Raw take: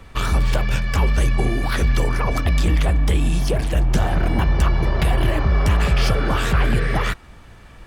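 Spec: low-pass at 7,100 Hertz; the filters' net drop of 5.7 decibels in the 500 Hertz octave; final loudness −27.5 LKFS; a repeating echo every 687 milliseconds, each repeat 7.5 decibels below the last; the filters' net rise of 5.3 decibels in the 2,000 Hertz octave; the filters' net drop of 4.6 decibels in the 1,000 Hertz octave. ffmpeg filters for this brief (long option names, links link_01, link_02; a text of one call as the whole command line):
ffmpeg -i in.wav -af "lowpass=7100,equalizer=frequency=500:width_type=o:gain=-6,equalizer=frequency=1000:width_type=o:gain=-7.5,equalizer=frequency=2000:width_type=o:gain=9,aecho=1:1:687|1374|2061|2748|3435:0.422|0.177|0.0744|0.0312|0.0131,volume=-8.5dB" out.wav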